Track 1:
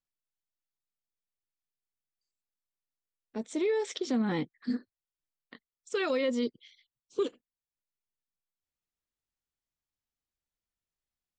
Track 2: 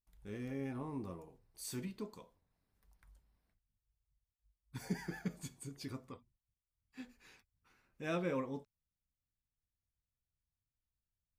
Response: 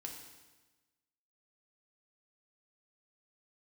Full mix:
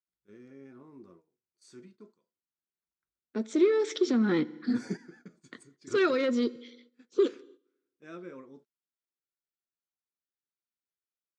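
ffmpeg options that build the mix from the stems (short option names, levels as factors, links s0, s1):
-filter_complex "[0:a]equalizer=f=3000:t=o:w=1.2:g=3,volume=1.06,asplit=3[s0][s1][s2];[s1]volume=0.251[s3];[1:a]highshelf=f=5700:g=4,volume=1.33[s4];[s2]apad=whole_len=502235[s5];[s4][s5]sidechaingate=range=0.2:threshold=0.00178:ratio=16:detection=peak[s6];[2:a]atrim=start_sample=2205[s7];[s3][s7]afir=irnorm=-1:irlink=0[s8];[s0][s6][s8]amix=inputs=3:normalize=0,agate=range=0.224:threshold=0.00112:ratio=16:detection=peak,asoftclip=type=tanh:threshold=0.0891,highpass=150,equalizer=f=220:t=q:w=4:g=4,equalizer=f=360:t=q:w=4:g=10,equalizer=f=810:t=q:w=4:g=-6,equalizer=f=1400:t=q:w=4:g=8,equalizer=f=2900:t=q:w=4:g=-5,lowpass=f=7200:w=0.5412,lowpass=f=7200:w=1.3066"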